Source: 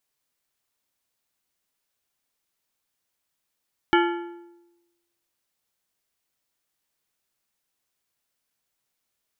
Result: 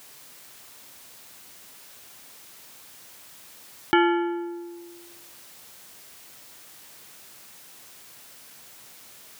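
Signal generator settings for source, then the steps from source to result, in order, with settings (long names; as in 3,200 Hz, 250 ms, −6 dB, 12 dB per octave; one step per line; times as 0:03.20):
struck metal plate, lowest mode 345 Hz, modes 7, decay 1.05 s, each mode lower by 2.5 dB, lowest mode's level −16 dB
high-pass filter 81 Hz 12 dB per octave
envelope flattener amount 50%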